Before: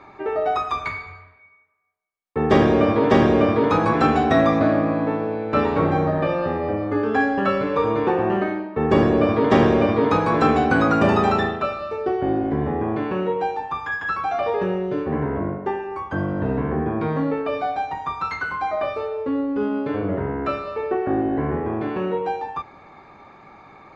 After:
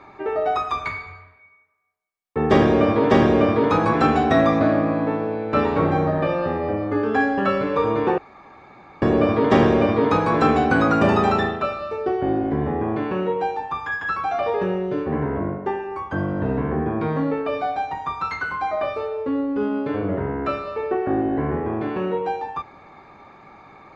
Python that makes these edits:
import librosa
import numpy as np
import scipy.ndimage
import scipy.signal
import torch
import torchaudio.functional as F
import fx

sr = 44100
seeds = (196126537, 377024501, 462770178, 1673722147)

y = fx.edit(x, sr, fx.room_tone_fill(start_s=8.18, length_s=0.84), tone=tone)